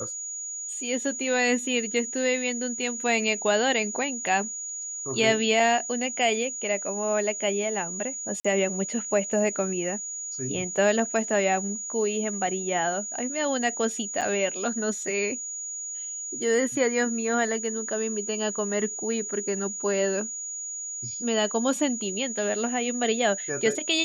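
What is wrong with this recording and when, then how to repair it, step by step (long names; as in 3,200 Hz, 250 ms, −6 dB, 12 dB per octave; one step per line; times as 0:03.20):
whistle 6,800 Hz −32 dBFS
0:08.40–0:08.45: drop-out 45 ms
0:14.21–0:14.22: drop-out 6.9 ms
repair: notch filter 6,800 Hz, Q 30
repair the gap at 0:08.40, 45 ms
repair the gap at 0:14.21, 6.9 ms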